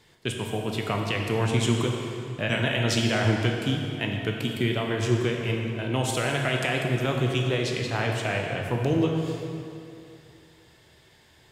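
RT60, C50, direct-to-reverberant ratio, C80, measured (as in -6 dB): 2.6 s, 2.0 dB, 0.5 dB, 3.0 dB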